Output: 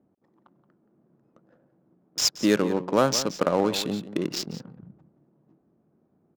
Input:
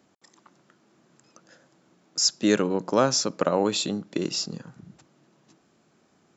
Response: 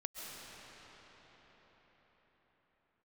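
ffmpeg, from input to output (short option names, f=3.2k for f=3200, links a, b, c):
-filter_complex "[0:a]adynamicsmooth=sensitivity=5.5:basefreq=550,asplit=2[a][b];[b]adelay=174.9,volume=-13dB,highshelf=f=4k:g=-3.94[c];[a][c]amix=inputs=2:normalize=0"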